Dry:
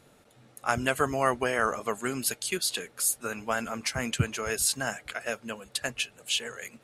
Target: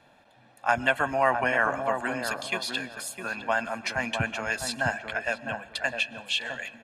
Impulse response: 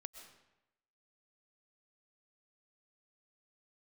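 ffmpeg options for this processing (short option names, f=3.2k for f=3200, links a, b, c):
-filter_complex "[0:a]acrossover=split=270 4100:gain=0.251 1 0.141[a][b][c];[a][b][c]amix=inputs=3:normalize=0,aecho=1:1:1.2:0.71,asplit=2[d][e];[e]adelay=657,lowpass=f=810:p=1,volume=-4dB,asplit=2[f][g];[g]adelay=657,lowpass=f=810:p=1,volume=0.29,asplit=2[h][i];[i]adelay=657,lowpass=f=810:p=1,volume=0.29,asplit=2[j][k];[k]adelay=657,lowpass=f=810:p=1,volume=0.29[l];[d][f][h][j][l]amix=inputs=5:normalize=0,asplit=2[m][n];[1:a]atrim=start_sample=2205[o];[n][o]afir=irnorm=-1:irlink=0,volume=-4dB[p];[m][p]amix=inputs=2:normalize=0"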